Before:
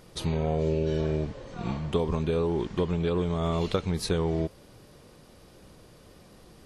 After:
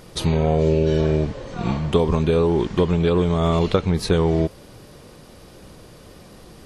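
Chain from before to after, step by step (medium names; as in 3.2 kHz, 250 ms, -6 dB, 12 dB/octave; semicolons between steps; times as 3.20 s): 3.59–4.13 s: treble shelf 3.9 kHz -7 dB; trim +8.5 dB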